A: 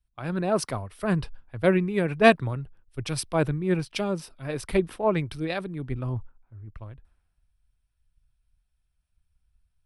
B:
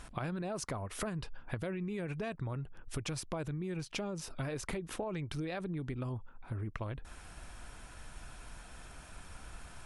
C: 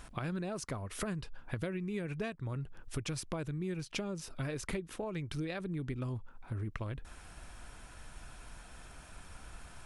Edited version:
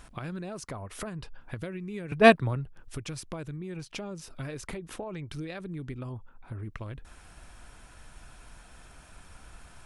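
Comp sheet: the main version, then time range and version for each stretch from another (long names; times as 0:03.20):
C
0:00.69–0:01.41: punch in from B
0:02.12–0:02.76: punch in from A
0:03.56–0:04.11: punch in from B
0:04.67–0:05.31: punch in from B
0:05.98–0:06.63: punch in from B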